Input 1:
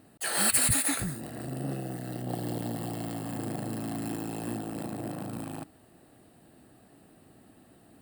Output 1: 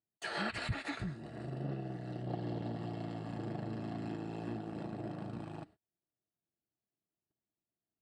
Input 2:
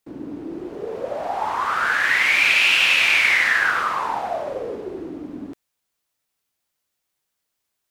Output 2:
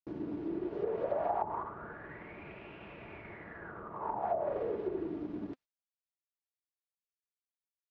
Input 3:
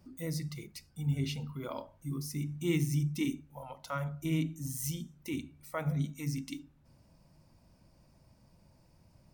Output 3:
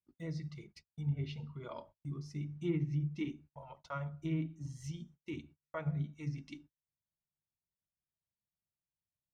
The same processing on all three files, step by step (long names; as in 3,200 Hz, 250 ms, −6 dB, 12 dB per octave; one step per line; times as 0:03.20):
high-shelf EQ 6,800 Hz +8.5 dB
transient designer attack +2 dB, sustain −3 dB
high-frequency loss of the air 170 metres
notch comb filter 260 Hz
noise gate −52 dBFS, range −35 dB
treble cut that deepens with the level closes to 380 Hz, closed at −20.5 dBFS
level −4 dB